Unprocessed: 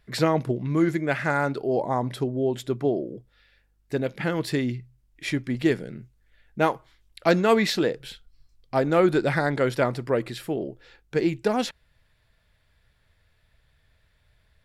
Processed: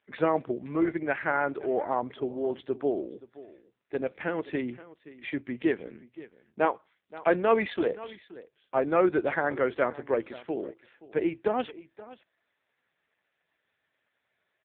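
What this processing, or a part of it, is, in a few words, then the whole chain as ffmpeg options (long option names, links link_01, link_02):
satellite phone: -af "highpass=300,lowpass=3200,aecho=1:1:525:0.126,volume=-1.5dB" -ar 8000 -c:a libopencore_amrnb -b:a 5900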